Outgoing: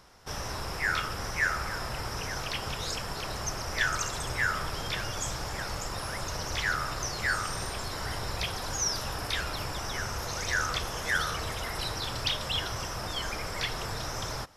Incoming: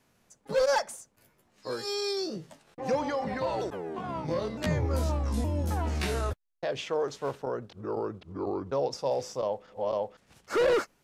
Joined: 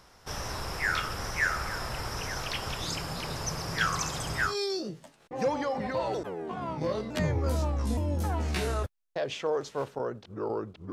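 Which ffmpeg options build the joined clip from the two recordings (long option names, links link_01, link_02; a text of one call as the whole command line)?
ffmpeg -i cue0.wav -i cue1.wav -filter_complex "[0:a]asettb=1/sr,asplit=3[link_01][link_02][link_03];[link_01]atrim=end=2.804[link_04];[link_02]atrim=start=2.8:end=4.56,asetpts=PTS-STARTPTS,afade=type=in:duration=0.004:curve=qsin,afade=type=out:start_time=1.756:duration=0.004:curve=qsin,afreqshift=-180[link_05];[link_03]atrim=start=4.556[link_06];[link_04][link_05]acrossfade=duration=0.004:curve1=hsin:curve2=qsin[link_07];[link_07][link_06]acrossfade=duration=0.004:curve1=qsin:curve2=hsin,apad=whole_dur=10.92,atrim=end=10.92,atrim=end=4.56,asetpts=PTS-STARTPTS[link_08];[1:a]atrim=start=1.91:end=8.39,asetpts=PTS-STARTPTS[link_09];[link_08][link_09]acrossfade=duration=0.12:curve1=tri:curve2=tri" out.wav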